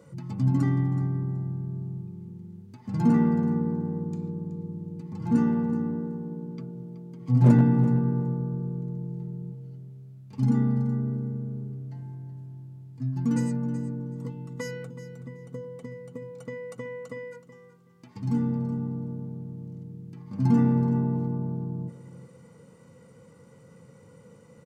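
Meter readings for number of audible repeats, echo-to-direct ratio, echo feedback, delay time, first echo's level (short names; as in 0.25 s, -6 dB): 2, -14.0 dB, 17%, 0.375 s, -14.0 dB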